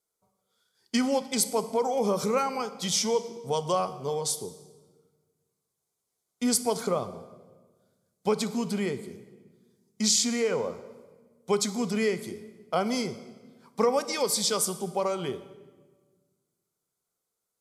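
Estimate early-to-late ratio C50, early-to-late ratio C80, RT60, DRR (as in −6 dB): 14.0 dB, 15.5 dB, 1.4 s, 12.0 dB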